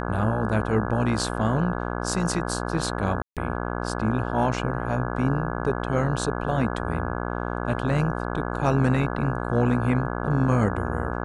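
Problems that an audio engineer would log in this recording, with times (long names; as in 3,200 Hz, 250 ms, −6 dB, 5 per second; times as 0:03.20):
mains buzz 60 Hz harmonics 28 −29 dBFS
0:03.22–0:03.37: drop-out 147 ms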